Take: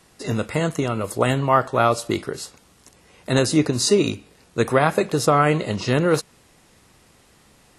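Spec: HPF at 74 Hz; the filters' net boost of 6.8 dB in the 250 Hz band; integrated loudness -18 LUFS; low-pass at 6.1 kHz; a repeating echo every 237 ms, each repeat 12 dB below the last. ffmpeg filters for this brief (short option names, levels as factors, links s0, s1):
-af "highpass=74,lowpass=6100,equalizer=f=250:t=o:g=9,aecho=1:1:237|474|711:0.251|0.0628|0.0157,volume=0.944"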